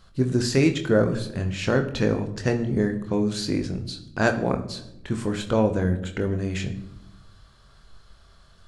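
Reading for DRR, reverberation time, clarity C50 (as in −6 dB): 5.0 dB, 0.90 s, 12.0 dB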